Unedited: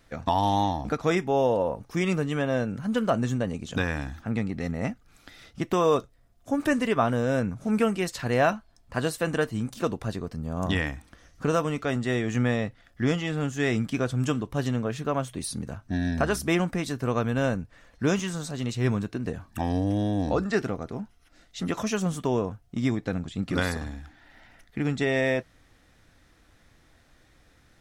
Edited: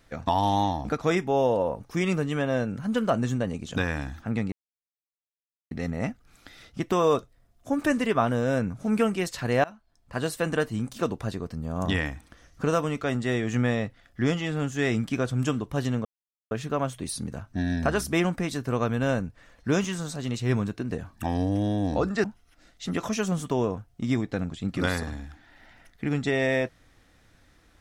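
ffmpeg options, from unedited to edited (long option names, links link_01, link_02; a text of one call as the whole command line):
ffmpeg -i in.wav -filter_complex "[0:a]asplit=5[link_01][link_02][link_03][link_04][link_05];[link_01]atrim=end=4.52,asetpts=PTS-STARTPTS,afade=type=out:start_time=4.516:duration=0.004:curve=hsin,apad=pad_dur=1.19[link_06];[link_02]atrim=start=4.52:end=8.45,asetpts=PTS-STARTPTS,afade=type=in:duration=0.004:curve=hsin,afade=type=out:start_time=3.926:duration=0.004:curve=hsin:silence=0.0630957[link_07];[link_03]atrim=start=8.45:end=14.86,asetpts=PTS-STARTPTS,afade=type=in:duration=0.71:silence=0.0630957,afade=type=out:start_time=6.406:duration=0.004:curve=hsin,apad=pad_dur=0.46[link_08];[link_04]atrim=start=14.86:end=20.592,asetpts=PTS-STARTPTS,afade=type=in:duration=0.004:curve=hsin[link_09];[link_05]atrim=start=20.978[link_10];[link_06][link_07][link_08][link_09]concat=n=4:v=0:a=1[link_11];[link_11][link_10]acrossfade=duration=0.004:curve1=hsin:curve2=hsin" out.wav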